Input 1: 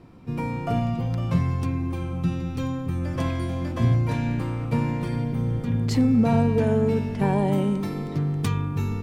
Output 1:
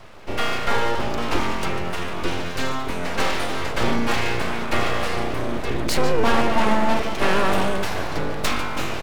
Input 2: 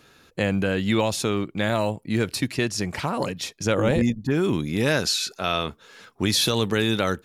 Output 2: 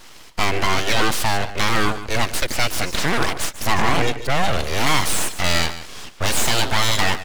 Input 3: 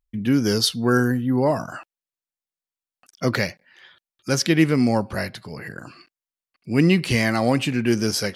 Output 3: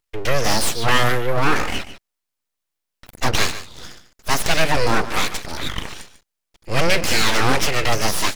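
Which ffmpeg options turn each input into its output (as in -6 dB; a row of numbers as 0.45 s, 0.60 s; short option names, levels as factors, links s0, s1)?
-filter_complex "[0:a]asplit=2[s0][s1];[s1]highpass=f=720:p=1,volume=11.2,asoftclip=type=tanh:threshold=0.562[s2];[s0][s2]amix=inputs=2:normalize=0,lowpass=f=7500:p=1,volume=0.501,acrossover=split=230|690|4500[s3][s4][s5][s6];[s6]asoftclip=type=tanh:threshold=0.0708[s7];[s3][s4][s5][s7]amix=inputs=4:normalize=0,aecho=1:1:146:0.224,aeval=exprs='abs(val(0))':c=same"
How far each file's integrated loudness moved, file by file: +1.0 LU, +3.0 LU, +0.5 LU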